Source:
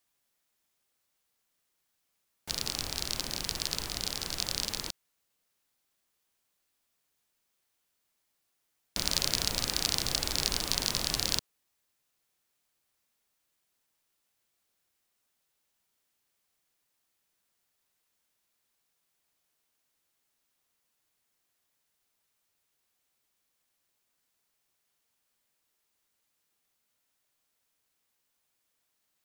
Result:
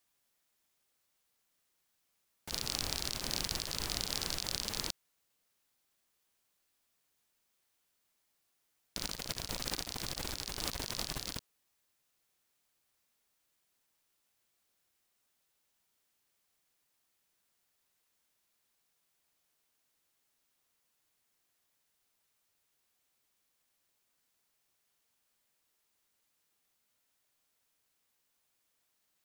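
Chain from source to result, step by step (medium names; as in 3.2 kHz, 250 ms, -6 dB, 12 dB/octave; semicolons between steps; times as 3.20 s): compressor with a negative ratio -35 dBFS, ratio -0.5; trim -3 dB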